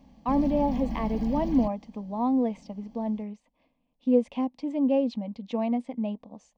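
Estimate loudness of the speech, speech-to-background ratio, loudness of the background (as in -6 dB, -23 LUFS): -28.0 LUFS, 7.0 dB, -35.0 LUFS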